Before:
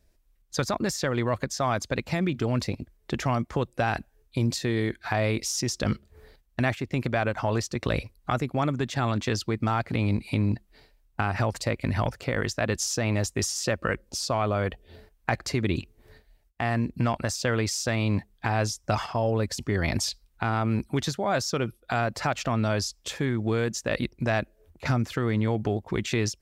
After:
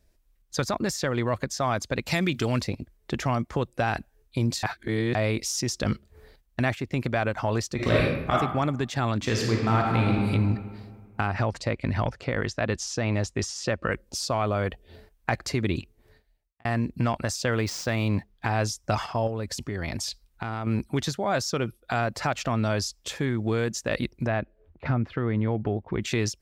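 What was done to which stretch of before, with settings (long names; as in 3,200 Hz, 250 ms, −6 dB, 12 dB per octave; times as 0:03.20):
0:02.06–0:02.60: high-shelf EQ 2,100 Hz +11.5 dB
0:04.63–0:05.15: reverse
0:07.75–0:08.32: thrown reverb, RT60 0.95 s, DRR −6 dB
0:09.18–0:10.27: thrown reverb, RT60 1.9 s, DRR −1 dB
0:11.27–0:13.92: high-frequency loss of the air 73 metres
0:15.66–0:16.65: fade out
0:17.52–0:18.45: running median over 5 samples
0:19.27–0:20.67: downward compressor, threshold −27 dBFS
0:24.27–0:26.02: high-frequency loss of the air 380 metres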